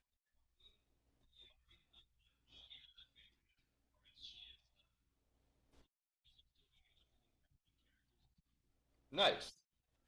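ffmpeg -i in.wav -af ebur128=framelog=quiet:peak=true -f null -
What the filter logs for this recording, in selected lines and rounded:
Integrated loudness:
  I:         -37.9 LUFS
  Threshold: -54.8 LUFS
Loudness range:
  LRA:        21.0 LU
  Threshold: -72.2 LUFS
  LRA low:   -65.3 LUFS
  LRA high:  -44.2 LUFS
True peak:
  Peak:      -22.8 dBFS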